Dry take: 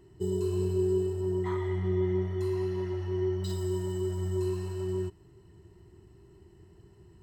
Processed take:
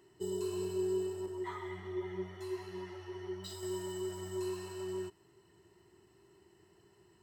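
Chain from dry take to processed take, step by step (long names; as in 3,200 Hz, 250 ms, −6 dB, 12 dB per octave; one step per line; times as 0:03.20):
high-pass filter 730 Hz 6 dB per octave
0:01.26–0:03.63: string-ensemble chorus
level +1 dB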